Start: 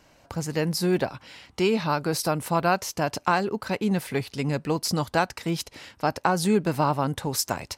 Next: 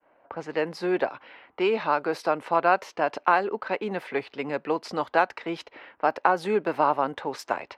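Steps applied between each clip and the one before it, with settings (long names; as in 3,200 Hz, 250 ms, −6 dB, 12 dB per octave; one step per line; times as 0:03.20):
low-pass that shuts in the quiet parts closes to 1,500 Hz, open at −21.5 dBFS
downward expander −55 dBFS
three-way crossover with the lows and the highs turned down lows −24 dB, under 310 Hz, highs −23 dB, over 3,100 Hz
level +2.5 dB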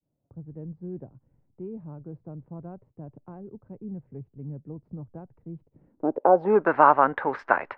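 in parallel at −8 dB: slack as between gear wheels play −35 dBFS
on the sum: low-pass filter sweep 130 Hz → 1,600 Hz, 0:05.68–0:06.73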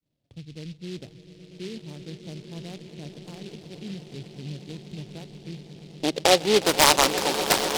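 phase distortion by the signal itself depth 0.17 ms
echo that builds up and dies away 121 ms, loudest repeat 8, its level −15.5 dB
short delay modulated by noise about 3,300 Hz, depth 0.15 ms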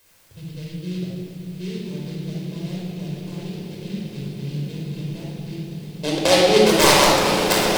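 in parallel at −6.5 dB: bit-depth reduction 8 bits, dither triangular
on the sum: rectangular room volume 2,800 cubic metres, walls mixed, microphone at 5.2 metres
level −6.5 dB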